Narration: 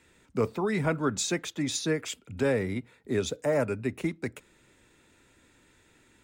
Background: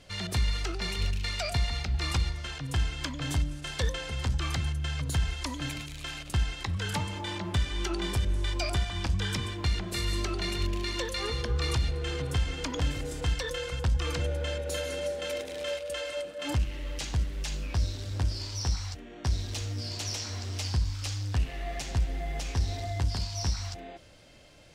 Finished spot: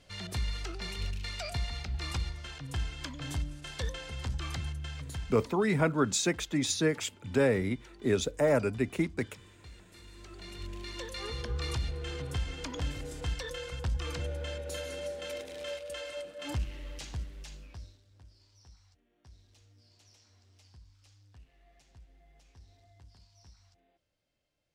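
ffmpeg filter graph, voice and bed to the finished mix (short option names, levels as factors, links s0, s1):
-filter_complex "[0:a]adelay=4950,volume=1.06[s0];[1:a]volume=3.76,afade=t=out:st=4.68:d=1:silence=0.141254,afade=t=in:st=10.14:d=1.27:silence=0.133352,afade=t=out:st=16.68:d=1.34:silence=0.0749894[s1];[s0][s1]amix=inputs=2:normalize=0"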